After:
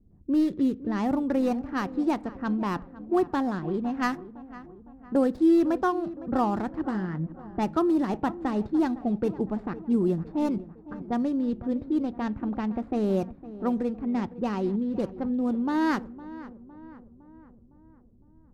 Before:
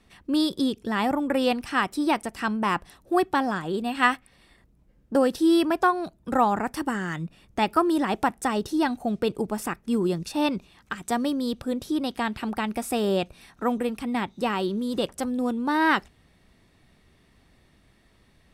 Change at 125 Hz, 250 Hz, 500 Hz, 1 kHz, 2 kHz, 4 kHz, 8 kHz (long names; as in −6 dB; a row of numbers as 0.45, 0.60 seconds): +1.5 dB, +0.5 dB, −2.5 dB, −6.0 dB, −10.0 dB, below −10 dB, below −10 dB